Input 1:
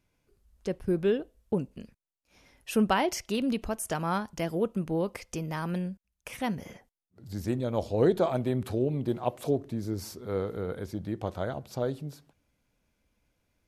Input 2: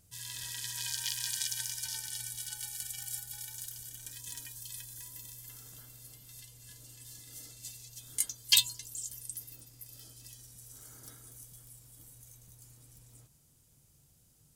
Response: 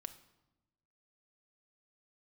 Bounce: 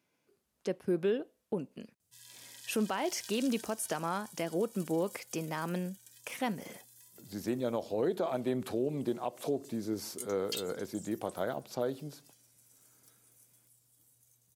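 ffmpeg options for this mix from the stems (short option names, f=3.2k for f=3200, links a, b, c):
-filter_complex "[0:a]highpass=210,volume=0dB[a];[1:a]lowshelf=f=120:g=-11,adelay=2000,volume=-11.5dB[b];[a][b]amix=inputs=2:normalize=0,highpass=67,alimiter=limit=-22dB:level=0:latency=1:release=187"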